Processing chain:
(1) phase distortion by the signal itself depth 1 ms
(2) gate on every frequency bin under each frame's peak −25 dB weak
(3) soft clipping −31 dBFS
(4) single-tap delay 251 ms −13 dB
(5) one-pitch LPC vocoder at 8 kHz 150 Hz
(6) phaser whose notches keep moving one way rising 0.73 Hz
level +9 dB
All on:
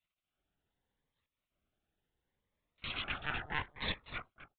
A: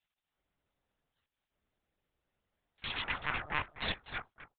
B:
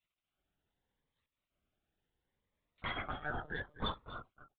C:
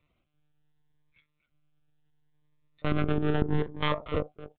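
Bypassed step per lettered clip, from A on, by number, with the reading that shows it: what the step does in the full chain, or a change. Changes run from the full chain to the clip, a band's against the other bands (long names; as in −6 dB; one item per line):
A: 6, 125 Hz band −2.5 dB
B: 1, change in crest factor −4.0 dB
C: 2, 4 kHz band −17.0 dB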